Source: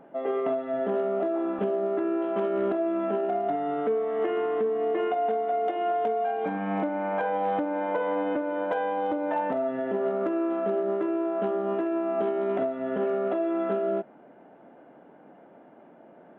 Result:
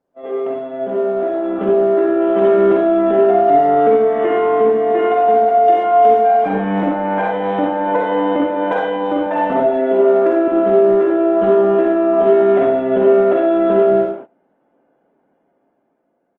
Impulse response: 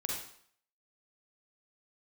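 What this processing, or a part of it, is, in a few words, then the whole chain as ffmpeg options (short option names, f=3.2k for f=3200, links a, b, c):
speakerphone in a meeting room: -filter_complex "[0:a]asettb=1/sr,asplit=3[a][b][c];[a]atrim=end=9.604[d];[b]atrim=start=9.6:end=10.48,asetpts=PTS-STARTPTS,afade=t=in:d=0.004:c=qsin,afade=t=out:st=0.876:d=0.004:c=qsin,highpass=f=240:w=0.5412,highpass=f=240:w=1.3066[e];[c]atrim=start=10.476[f];[d][e]acrossfade=d=0.004:c1=hsin:c2=qsin[g];[g][f]acrossfade=d=0.004:c1=qsin:c2=hsin[h];[1:a]atrim=start_sample=2205[i];[h][i]afir=irnorm=-1:irlink=0,asplit=2[j][k];[k]adelay=90,highpass=300,lowpass=3.4k,asoftclip=type=hard:threshold=-20.5dB,volume=-21dB[l];[j][l]amix=inputs=2:normalize=0,dynaudnorm=f=620:g=5:m=12dB,agate=range=-22dB:threshold=-30dB:ratio=16:detection=peak" -ar 48000 -c:a libopus -b:a 24k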